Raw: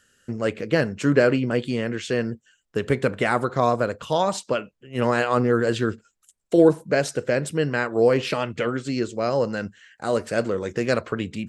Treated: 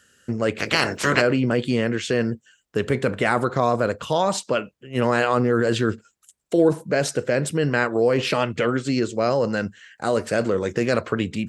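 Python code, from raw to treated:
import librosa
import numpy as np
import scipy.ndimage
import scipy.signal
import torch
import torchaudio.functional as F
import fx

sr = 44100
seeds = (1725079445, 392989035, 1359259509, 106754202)

p1 = fx.spec_clip(x, sr, under_db=26, at=(0.58, 1.2), fade=0.02)
p2 = scipy.signal.sosfilt(scipy.signal.butter(2, 50.0, 'highpass', fs=sr, output='sos'), p1)
p3 = fx.over_compress(p2, sr, threshold_db=-24.0, ratio=-1.0)
p4 = p2 + (p3 * librosa.db_to_amplitude(-1.0))
y = p4 * librosa.db_to_amplitude(-3.0)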